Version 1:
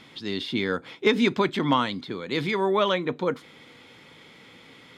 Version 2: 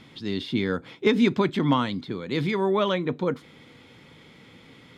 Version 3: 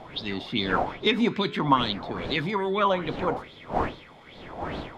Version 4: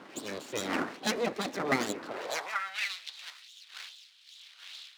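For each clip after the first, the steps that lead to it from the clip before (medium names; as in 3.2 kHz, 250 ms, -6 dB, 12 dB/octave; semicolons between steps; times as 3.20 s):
bass shelf 270 Hz +10 dB; trim -3 dB
wind noise 550 Hz -34 dBFS; flange 0.48 Hz, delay 8.4 ms, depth 8.6 ms, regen -84%; sweeping bell 2.4 Hz 730–4000 Hz +16 dB
full-wave rectifier; dynamic bell 3.2 kHz, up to -5 dB, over -46 dBFS, Q 2.5; high-pass sweep 270 Hz -> 3.6 kHz, 2.04–2.93 s; trim -3.5 dB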